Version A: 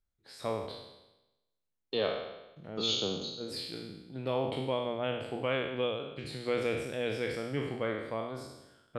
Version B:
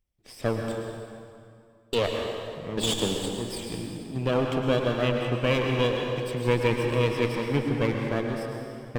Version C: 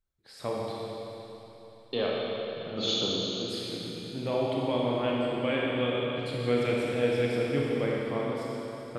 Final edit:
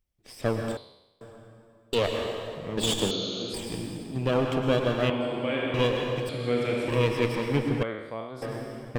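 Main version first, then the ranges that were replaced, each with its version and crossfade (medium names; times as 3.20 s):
B
0.77–1.21 s: from A
3.11–3.54 s: from C
5.10–5.74 s: from C
6.29–6.88 s: from C
7.83–8.42 s: from A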